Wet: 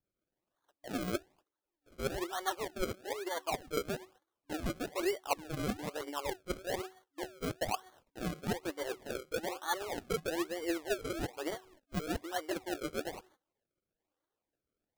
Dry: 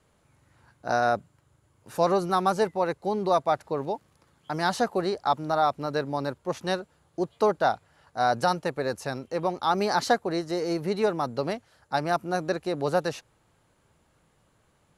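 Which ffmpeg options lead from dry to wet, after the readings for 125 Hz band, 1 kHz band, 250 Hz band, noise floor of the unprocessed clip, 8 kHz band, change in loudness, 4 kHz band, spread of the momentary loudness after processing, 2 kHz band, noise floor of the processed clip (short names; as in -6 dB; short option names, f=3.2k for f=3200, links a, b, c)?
-9.0 dB, -14.5 dB, -8.0 dB, -67 dBFS, -2.0 dB, -11.0 dB, -6.5 dB, 6 LU, -8.5 dB, under -85 dBFS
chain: -af "bandreject=f=374.3:t=h:w=4,bandreject=f=748.6:t=h:w=4,bandreject=f=1.1229k:t=h:w=4,bandreject=f=1.4972k:t=h:w=4,agate=range=-20dB:threshold=-55dB:ratio=16:detection=peak,afftfilt=real='re*between(b*sr/4096,280,3100)':imag='im*between(b*sr/4096,280,3100)':win_size=4096:overlap=0.75,areverse,acompressor=threshold=-32dB:ratio=10,areverse,aphaser=in_gain=1:out_gain=1:delay=4.1:decay=0.64:speed=1.3:type=triangular,acrusher=samples=33:mix=1:aa=0.000001:lfo=1:lforange=33:lforate=1.1,volume=-2.5dB"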